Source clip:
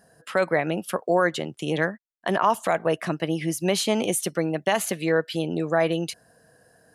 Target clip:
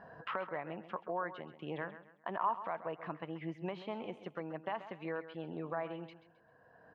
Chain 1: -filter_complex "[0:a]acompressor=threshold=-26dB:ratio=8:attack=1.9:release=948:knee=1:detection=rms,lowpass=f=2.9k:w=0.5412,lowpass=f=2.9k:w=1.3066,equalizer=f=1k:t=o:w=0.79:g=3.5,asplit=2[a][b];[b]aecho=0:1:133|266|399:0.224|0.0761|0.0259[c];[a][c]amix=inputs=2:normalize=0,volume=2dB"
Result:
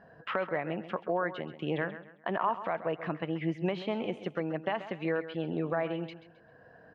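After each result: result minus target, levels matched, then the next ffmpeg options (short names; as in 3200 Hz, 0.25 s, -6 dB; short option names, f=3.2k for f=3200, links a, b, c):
compressor: peak gain reduction -10 dB; 1000 Hz band -3.5 dB
-filter_complex "[0:a]acompressor=threshold=-37.5dB:ratio=8:attack=1.9:release=948:knee=1:detection=rms,lowpass=f=2.9k:w=0.5412,lowpass=f=2.9k:w=1.3066,equalizer=f=1k:t=o:w=0.79:g=3.5,asplit=2[a][b];[b]aecho=0:1:133|266|399:0.224|0.0761|0.0259[c];[a][c]amix=inputs=2:normalize=0,volume=2dB"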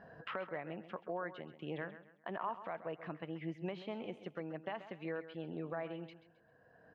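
1000 Hz band -3.5 dB
-filter_complex "[0:a]acompressor=threshold=-37.5dB:ratio=8:attack=1.9:release=948:knee=1:detection=rms,lowpass=f=2.9k:w=0.5412,lowpass=f=2.9k:w=1.3066,equalizer=f=1k:t=o:w=0.79:g=11.5,asplit=2[a][b];[b]aecho=0:1:133|266|399:0.224|0.0761|0.0259[c];[a][c]amix=inputs=2:normalize=0,volume=2dB"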